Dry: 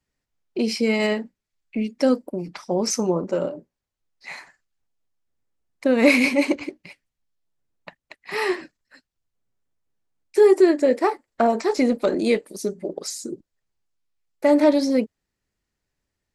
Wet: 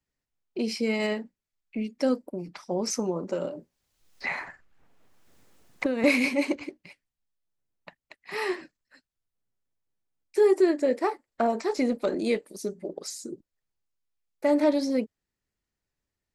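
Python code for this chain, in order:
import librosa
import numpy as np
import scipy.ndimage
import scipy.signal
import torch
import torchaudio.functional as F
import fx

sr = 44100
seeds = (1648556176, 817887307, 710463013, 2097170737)

y = fx.band_squash(x, sr, depth_pct=100, at=(2.96, 6.04))
y = y * librosa.db_to_amplitude(-6.0)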